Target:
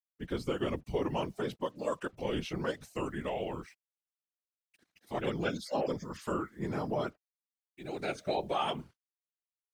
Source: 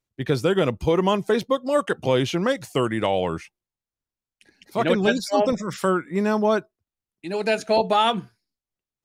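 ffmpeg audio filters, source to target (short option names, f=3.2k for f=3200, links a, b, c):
-af "asetrate=41013,aresample=44100,acrusher=bits=8:mix=0:aa=0.5,afftfilt=real='hypot(re,im)*cos(2*PI*random(0))':imag='hypot(re,im)*sin(2*PI*random(1))':win_size=512:overlap=0.75,volume=-7dB"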